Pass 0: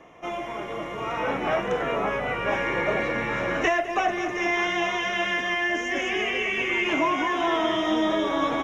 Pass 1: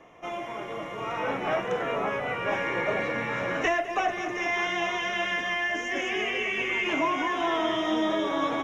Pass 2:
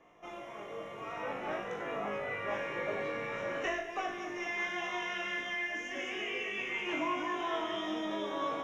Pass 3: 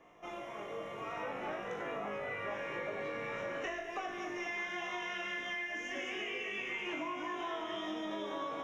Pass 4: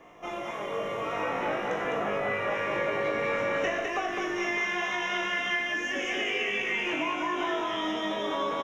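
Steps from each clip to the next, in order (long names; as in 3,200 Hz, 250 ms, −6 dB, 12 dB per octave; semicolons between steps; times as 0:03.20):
mains-hum notches 50/100/150/200/250/300/350 Hz; level −2.5 dB
tuned comb filter 51 Hz, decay 0.53 s, harmonics all, mix 90%
downward compressor, threshold −37 dBFS, peak gain reduction 8 dB; level +1 dB
single-tap delay 206 ms −3.5 dB; level +8.5 dB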